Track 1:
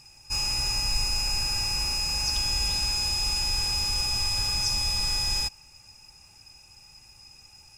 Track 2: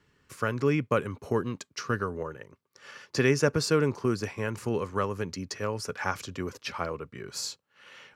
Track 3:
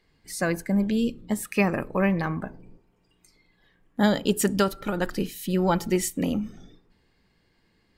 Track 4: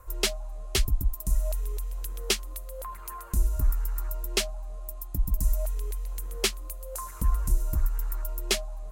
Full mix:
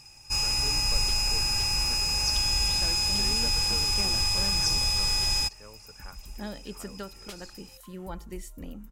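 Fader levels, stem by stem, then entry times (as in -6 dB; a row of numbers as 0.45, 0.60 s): +1.0, -19.0, -17.0, -19.0 dB; 0.00, 0.00, 2.40, 0.85 s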